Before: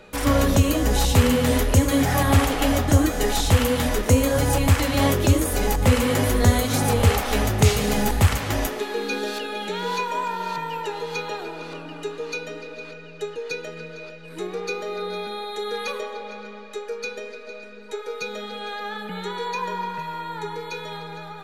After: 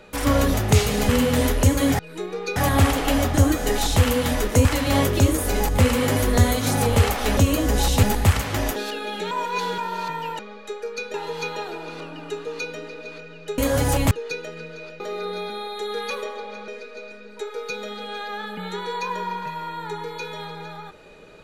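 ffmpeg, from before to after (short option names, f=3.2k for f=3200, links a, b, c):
-filter_complex "[0:a]asplit=17[a][b][c][d][e][f][g][h][i][j][k][l][m][n][o][p][q];[a]atrim=end=0.542[r];[b]atrim=start=7.438:end=7.992[s];[c]atrim=start=1.198:end=2.102[t];[d]atrim=start=14.198:end=14.772[u];[e]atrim=start=2.098:end=4.192[v];[f]atrim=start=4.718:end=7.442[w];[g]atrim=start=0.538:end=1.202[x];[h]atrim=start=7.988:end=8.722[y];[i]atrim=start=9.238:end=9.792[z];[j]atrim=start=9.788:end=10.262,asetpts=PTS-STARTPTS,areverse[aa];[k]atrim=start=10.258:end=10.872[ab];[l]atrim=start=16.448:end=17.202[ac];[m]atrim=start=10.868:end=13.312[ad];[n]atrim=start=4.188:end=4.722[ae];[o]atrim=start=13.308:end=14.202[af];[p]atrim=start=14.768:end=16.452[ag];[q]atrim=start=17.198[ah];[r][s]acrossfade=d=0.004:c1=hsin:c2=hsin[ai];[ai][t]acrossfade=d=0.004:c1=hsin:c2=hsin[aj];[aj][u]acrossfade=d=0.004:c1=hsin:c2=hsin[ak];[ak][v]acrossfade=d=0.004:c1=hsin:c2=hsin[al];[al][w]acrossfade=d=0.004:c1=hsin:c2=hsin[am];[am][x]acrossfade=d=0.004:c1=hsin:c2=hsin[an];[an][y]acrossfade=d=0.004:c1=hsin:c2=hsin[ao];[ao][z]acrossfade=d=0.004:c1=hsin:c2=hsin[ap];[ap][aa]acrossfade=d=0.004:c1=hsin:c2=hsin[aq];[aq][ab]acrossfade=d=0.004:c1=hsin:c2=hsin[ar];[ar][ac]acrossfade=d=0.004:c1=hsin:c2=hsin[as];[as][ad]acrossfade=d=0.004:c1=hsin:c2=hsin[at];[at][ae]acrossfade=d=0.004:c1=hsin:c2=hsin[au];[au][af]acrossfade=d=0.004:c1=hsin:c2=hsin[av];[av][ag]acrossfade=d=0.004:c1=hsin:c2=hsin[aw];[aw][ah]acrossfade=d=0.004:c1=hsin:c2=hsin"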